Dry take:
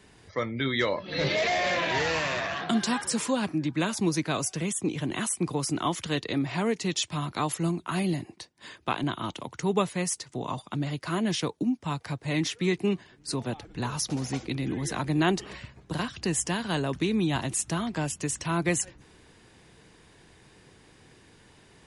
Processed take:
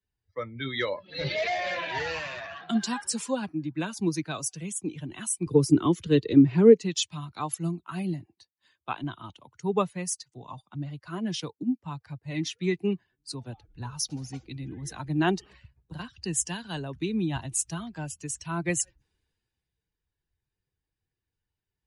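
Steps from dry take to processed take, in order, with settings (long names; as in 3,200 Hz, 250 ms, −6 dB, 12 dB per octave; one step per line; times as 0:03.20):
spectral dynamics exaggerated over time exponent 1.5
0:05.46–0:06.81: low shelf with overshoot 550 Hz +8 dB, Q 3
multiband upward and downward expander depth 40%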